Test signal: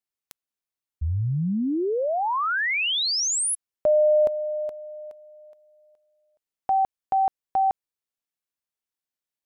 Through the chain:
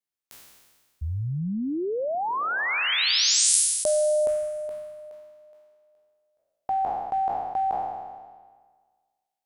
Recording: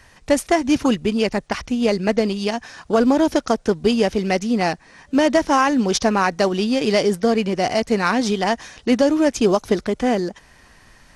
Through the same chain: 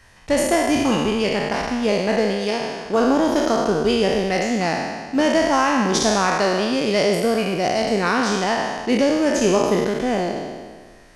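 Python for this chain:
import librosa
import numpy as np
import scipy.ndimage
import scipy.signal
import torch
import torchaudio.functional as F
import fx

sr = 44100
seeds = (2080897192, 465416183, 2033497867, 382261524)

y = fx.spec_trails(x, sr, decay_s=1.57)
y = y * 10.0 ** (-4.0 / 20.0)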